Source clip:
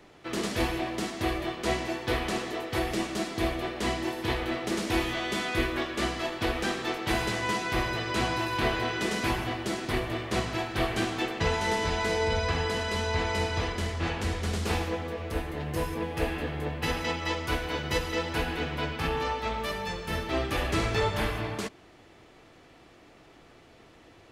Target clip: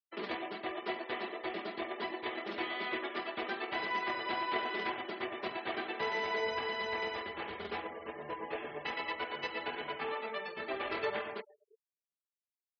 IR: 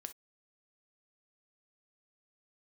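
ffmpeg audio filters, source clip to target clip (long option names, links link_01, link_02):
-filter_complex "[0:a]highpass=frequency=78:width=0.5412,highpass=frequency=78:width=1.3066,aecho=1:1:5:0.51,asplit=2[link_01][link_02];[1:a]atrim=start_sample=2205,asetrate=52920,aresample=44100[link_03];[link_02][link_03]afir=irnorm=-1:irlink=0,volume=-7.5dB[link_04];[link_01][link_04]amix=inputs=2:normalize=0,aeval=exprs='sgn(val(0))*max(abs(val(0))-0.00251,0)':channel_layout=same,acrossover=split=300 4400:gain=0.158 1 0.126[link_05][link_06][link_07];[link_05][link_06][link_07]amix=inputs=3:normalize=0,asplit=2[link_08][link_09];[link_09]adelay=651,lowpass=frequency=2800:poles=1,volume=-22dB,asplit=2[link_10][link_11];[link_11]adelay=651,lowpass=frequency=2800:poles=1,volume=0.17[link_12];[link_08][link_10][link_12]amix=inputs=3:normalize=0,afftfilt=real='re*gte(hypot(re,im),0.0112)':imag='im*gte(hypot(re,im),0.0112)':win_size=1024:overlap=0.75,adynamicequalizer=threshold=0.00158:dfrequency=170:dqfactor=3.8:tfrequency=170:tqfactor=3.8:attack=5:release=100:ratio=0.375:range=2.5:mode=cutabove:tftype=bell,atempo=1.9,volume=-7dB"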